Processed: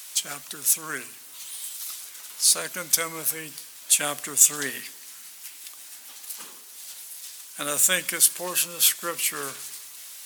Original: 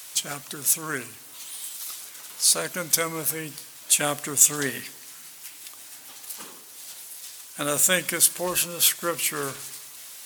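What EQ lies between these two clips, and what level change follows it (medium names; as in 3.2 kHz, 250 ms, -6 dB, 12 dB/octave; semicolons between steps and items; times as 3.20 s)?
high-pass 140 Hz 24 dB/octave; tilt shelf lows -3.5 dB; -3.0 dB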